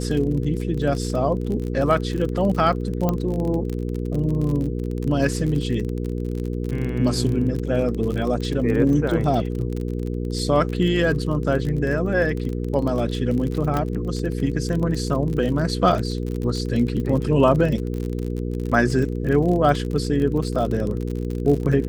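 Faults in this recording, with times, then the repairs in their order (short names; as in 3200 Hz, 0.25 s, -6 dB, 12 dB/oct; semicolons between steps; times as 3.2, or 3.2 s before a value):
crackle 37/s -26 dBFS
hum 60 Hz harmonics 8 -26 dBFS
3.09 pop -9 dBFS
13.77 pop -11 dBFS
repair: de-click; de-hum 60 Hz, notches 8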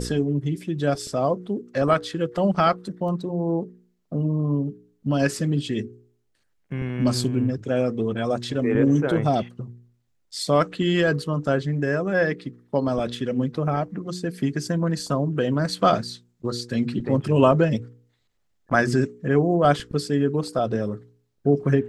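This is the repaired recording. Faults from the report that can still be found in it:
3.09 pop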